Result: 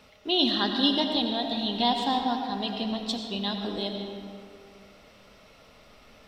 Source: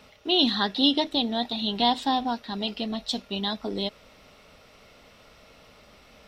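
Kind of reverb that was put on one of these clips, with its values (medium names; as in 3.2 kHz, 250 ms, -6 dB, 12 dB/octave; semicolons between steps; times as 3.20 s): algorithmic reverb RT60 2.3 s, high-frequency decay 0.55×, pre-delay 50 ms, DRR 3.5 dB; trim -2.5 dB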